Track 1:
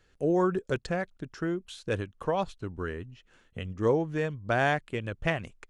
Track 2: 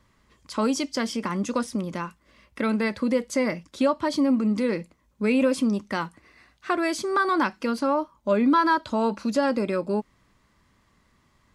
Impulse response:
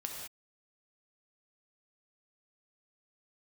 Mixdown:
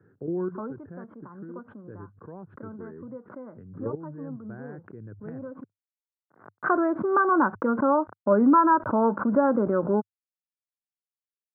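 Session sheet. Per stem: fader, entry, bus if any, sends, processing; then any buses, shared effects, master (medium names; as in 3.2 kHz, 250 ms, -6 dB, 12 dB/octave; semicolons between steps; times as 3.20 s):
-1.5 dB, 0.00 s, no send, gate -58 dBFS, range -21 dB; high-order bell 850 Hz -12 dB; level held to a coarse grid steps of 13 dB
+2.5 dB, 0.00 s, muted 5.64–6.30 s, no send, companded quantiser 8-bit; crossover distortion -50 dBFS; auto duck -19 dB, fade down 0.90 s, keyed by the first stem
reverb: none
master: Chebyshev band-pass 100–1500 Hz, order 5; swell ahead of each attack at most 120 dB/s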